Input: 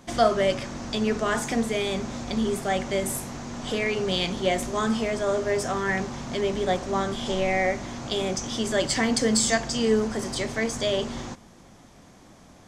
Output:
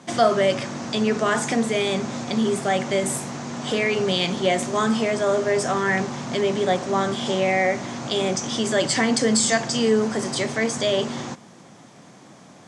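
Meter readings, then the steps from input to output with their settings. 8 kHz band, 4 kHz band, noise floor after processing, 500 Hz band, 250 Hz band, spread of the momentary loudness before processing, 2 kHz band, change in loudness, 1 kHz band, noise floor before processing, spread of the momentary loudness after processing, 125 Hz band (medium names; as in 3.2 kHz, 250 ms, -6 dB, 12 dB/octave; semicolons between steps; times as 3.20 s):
+3.5 dB, +3.5 dB, -47 dBFS, +3.5 dB, +3.5 dB, 9 LU, +4.0 dB, +3.5 dB, +4.0 dB, -51 dBFS, 7 LU, +3.0 dB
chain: in parallel at -2 dB: peak limiter -18 dBFS, peak gain reduction 9 dB; on the sum: Chebyshev band-pass 130–9300 Hz, order 3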